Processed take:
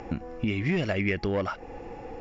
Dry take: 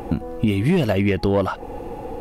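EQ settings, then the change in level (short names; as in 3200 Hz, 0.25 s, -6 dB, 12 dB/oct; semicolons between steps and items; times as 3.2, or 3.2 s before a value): dynamic EQ 930 Hz, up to -4 dB, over -39 dBFS, Q 3.7; rippled Chebyshev low-pass 7300 Hz, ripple 9 dB; 0.0 dB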